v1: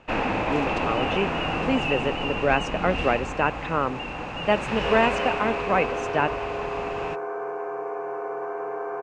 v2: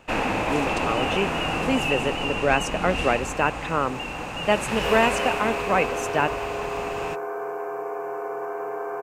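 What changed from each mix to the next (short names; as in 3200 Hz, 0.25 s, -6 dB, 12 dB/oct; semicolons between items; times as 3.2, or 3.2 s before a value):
master: remove air absorption 130 m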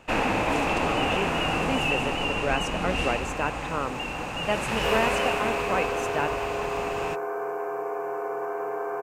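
speech -6.0 dB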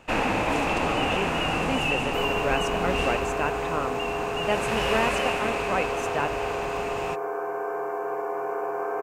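second sound: entry -2.70 s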